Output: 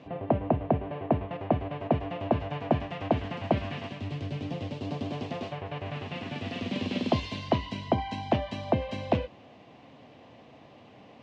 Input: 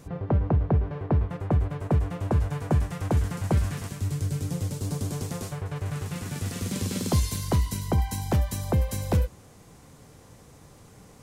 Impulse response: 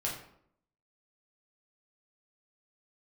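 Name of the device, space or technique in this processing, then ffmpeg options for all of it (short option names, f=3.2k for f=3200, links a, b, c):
kitchen radio: -af "highpass=170,equalizer=f=170:t=q:w=4:g=-7,equalizer=f=250:t=q:w=4:g=4,equalizer=f=430:t=q:w=4:g=-4,equalizer=f=660:t=q:w=4:g=8,equalizer=f=1.4k:t=q:w=4:g=-8,equalizer=f=2.8k:t=q:w=4:g=7,lowpass=f=3.7k:w=0.5412,lowpass=f=3.7k:w=1.3066,volume=1.5dB"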